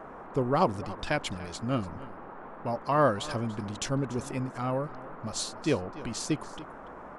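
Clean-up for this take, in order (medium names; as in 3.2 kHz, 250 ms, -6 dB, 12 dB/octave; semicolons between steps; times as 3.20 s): noise print and reduce 30 dB; inverse comb 288 ms -17.5 dB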